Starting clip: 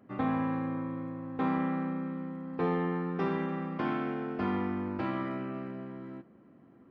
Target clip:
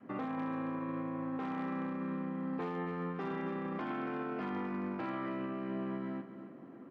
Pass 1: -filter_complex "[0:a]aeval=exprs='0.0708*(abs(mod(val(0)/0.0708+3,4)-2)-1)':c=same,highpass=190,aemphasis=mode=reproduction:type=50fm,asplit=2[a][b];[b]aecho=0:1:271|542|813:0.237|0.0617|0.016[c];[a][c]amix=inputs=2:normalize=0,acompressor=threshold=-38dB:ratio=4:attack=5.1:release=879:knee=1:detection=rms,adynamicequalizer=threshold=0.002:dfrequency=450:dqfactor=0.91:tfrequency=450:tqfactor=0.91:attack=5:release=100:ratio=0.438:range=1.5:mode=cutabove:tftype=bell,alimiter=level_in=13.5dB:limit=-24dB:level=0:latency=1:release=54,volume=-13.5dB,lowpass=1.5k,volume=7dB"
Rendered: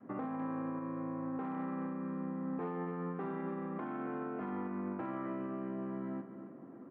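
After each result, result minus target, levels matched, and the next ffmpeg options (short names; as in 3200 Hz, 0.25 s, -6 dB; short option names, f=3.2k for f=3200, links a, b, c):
compressor: peak gain reduction +11.5 dB; 2000 Hz band -4.5 dB
-filter_complex "[0:a]aeval=exprs='0.0708*(abs(mod(val(0)/0.0708+3,4)-2)-1)':c=same,highpass=190,aemphasis=mode=reproduction:type=50fm,asplit=2[a][b];[b]aecho=0:1:271|542|813:0.237|0.0617|0.016[c];[a][c]amix=inputs=2:normalize=0,adynamicequalizer=threshold=0.002:dfrequency=450:dqfactor=0.91:tfrequency=450:tqfactor=0.91:attack=5:release=100:ratio=0.438:range=1.5:mode=cutabove:tftype=bell,alimiter=level_in=13.5dB:limit=-24dB:level=0:latency=1:release=54,volume=-13.5dB,lowpass=1.5k,volume=7dB"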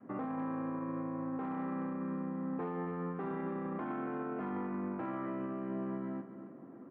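2000 Hz band -4.5 dB
-filter_complex "[0:a]aeval=exprs='0.0708*(abs(mod(val(0)/0.0708+3,4)-2)-1)':c=same,highpass=190,aemphasis=mode=reproduction:type=50fm,asplit=2[a][b];[b]aecho=0:1:271|542|813:0.237|0.0617|0.016[c];[a][c]amix=inputs=2:normalize=0,adynamicequalizer=threshold=0.002:dfrequency=450:dqfactor=0.91:tfrequency=450:tqfactor=0.91:attack=5:release=100:ratio=0.438:range=1.5:mode=cutabove:tftype=bell,alimiter=level_in=13.5dB:limit=-24dB:level=0:latency=1:release=54,volume=-13.5dB,volume=7dB"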